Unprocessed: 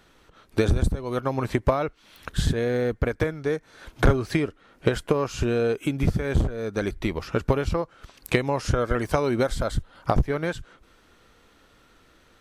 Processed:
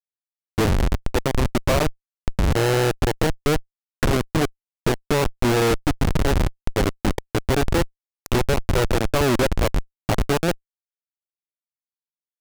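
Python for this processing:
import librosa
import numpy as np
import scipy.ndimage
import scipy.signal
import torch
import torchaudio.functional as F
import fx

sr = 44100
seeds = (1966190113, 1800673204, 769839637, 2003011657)

y = fx.schmitt(x, sr, flips_db=-22.0)
y = fx.doppler_dist(y, sr, depth_ms=0.72)
y = y * librosa.db_to_amplitude(8.5)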